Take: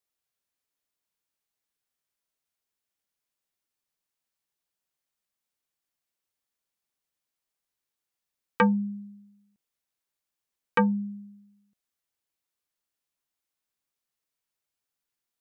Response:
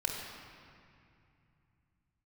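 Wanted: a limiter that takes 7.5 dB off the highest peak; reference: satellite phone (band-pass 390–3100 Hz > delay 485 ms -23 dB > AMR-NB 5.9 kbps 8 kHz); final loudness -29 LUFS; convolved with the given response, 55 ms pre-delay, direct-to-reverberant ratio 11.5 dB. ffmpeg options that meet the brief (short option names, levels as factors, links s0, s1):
-filter_complex "[0:a]alimiter=limit=0.0891:level=0:latency=1,asplit=2[s0][s1];[1:a]atrim=start_sample=2205,adelay=55[s2];[s1][s2]afir=irnorm=-1:irlink=0,volume=0.158[s3];[s0][s3]amix=inputs=2:normalize=0,highpass=390,lowpass=3100,aecho=1:1:485:0.0708,volume=3.35" -ar 8000 -c:a libopencore_amrnb -b:a 5900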